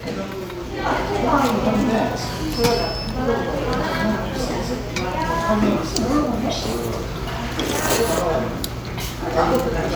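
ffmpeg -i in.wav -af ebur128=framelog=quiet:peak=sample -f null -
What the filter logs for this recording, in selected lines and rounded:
Integrated loudness:
  I:         -21.7 LUFS
  Threshold: -31.7 LUFS
Loudness range:
  LRA:         1.7 LU
  Threshold: -41.7 LUFS
  LRA low:   -22.4 LUFS
  LRA high:  -20.7 LUFS
Sample peak:
  Peak:       -3.4 dBFS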